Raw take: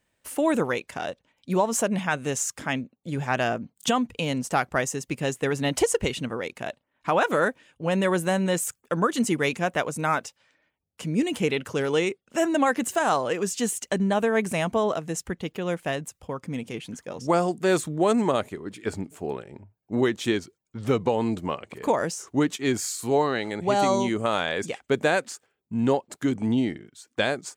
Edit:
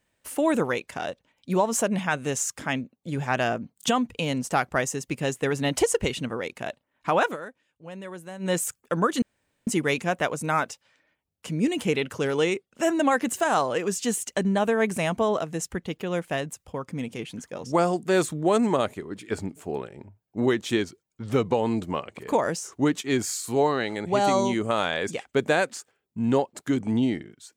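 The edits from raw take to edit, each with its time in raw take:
7.25–8.51 s: dip -15.5 dB, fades 0.12 s
9.22 s: insert room tone 0.45 s

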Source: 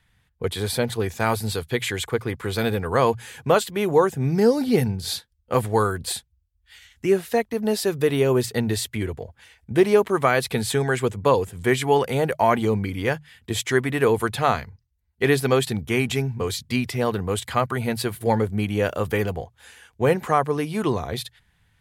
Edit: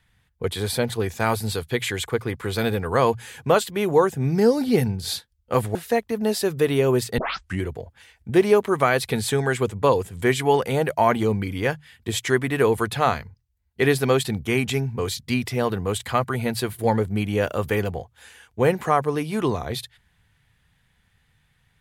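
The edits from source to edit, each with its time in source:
5.75–7.17 s: delete
8.60 s: tape start 0.43 s

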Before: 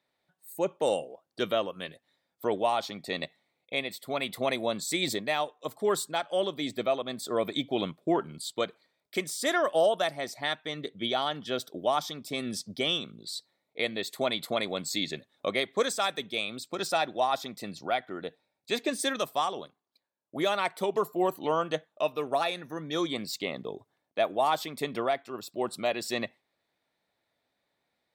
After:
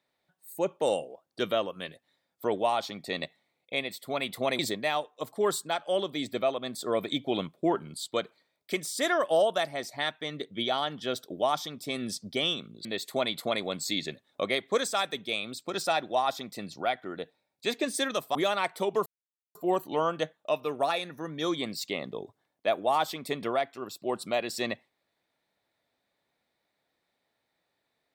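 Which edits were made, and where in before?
4.59–5.03 s: delete
13.29–13.90 s: delete
19.40–20.36 s: delete
21.07 s: insert silence 0.49 s

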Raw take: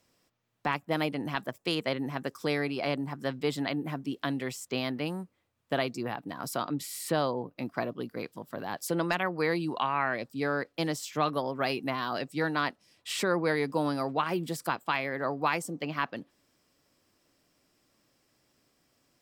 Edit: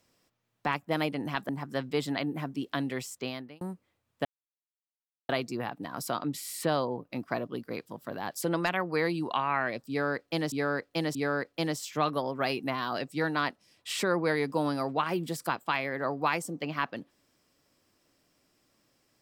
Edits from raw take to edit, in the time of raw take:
1.49–2.99 s: delete
4.58–5.11 s: fade out
5.75 s: insert silence 1.04 s
10.35–10.98 s: loop, 3 plays

